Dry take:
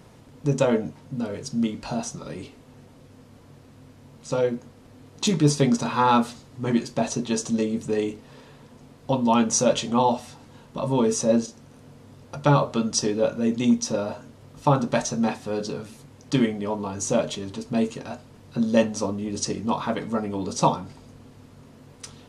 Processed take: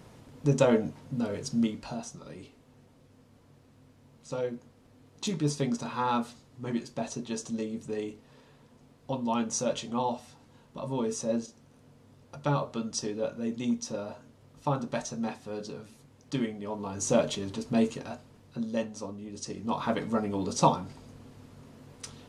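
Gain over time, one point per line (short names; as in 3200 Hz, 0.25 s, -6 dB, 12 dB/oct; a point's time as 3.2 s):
1.58 s -2 dB
2 s -9.5 dB
16.62 s -9.5 dB
17.13 s -2 dB
17.87 s -2 dB
18.79 s -12 dB
19.42 s -12 dB
19.89 s -2.5 dB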